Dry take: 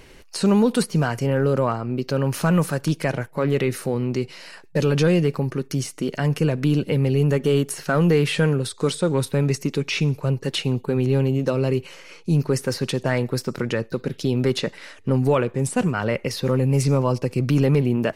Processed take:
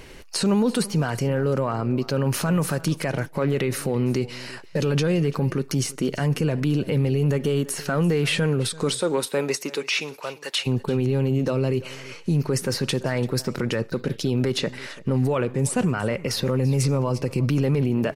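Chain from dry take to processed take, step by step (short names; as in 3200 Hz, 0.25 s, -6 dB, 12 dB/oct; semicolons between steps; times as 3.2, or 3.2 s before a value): 8.93–10.66 HPF 290 Hz -> 1000 Hz 12 dB/oct; limiter -17.5 dBFS, peak gain reduction 9 dB; echo 0.339 s -19.5 dB; gain +3.5 dB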